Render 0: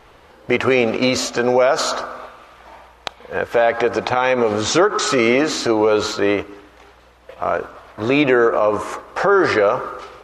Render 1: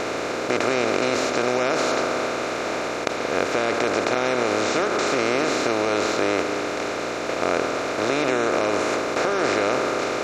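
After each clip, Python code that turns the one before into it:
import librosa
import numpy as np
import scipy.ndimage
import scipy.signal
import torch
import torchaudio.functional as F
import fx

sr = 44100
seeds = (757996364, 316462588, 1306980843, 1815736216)

y = fx.bin_compress(x, sr, power=0.2)
y = y * librosa.db_to_amplitude(-14.5)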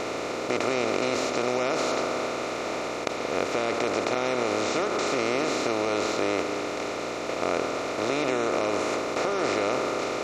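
y = fx.notch(x, sr, hz=1600.0, q=6.4)
y = y * librosa.db_to_amplitude(-4.0)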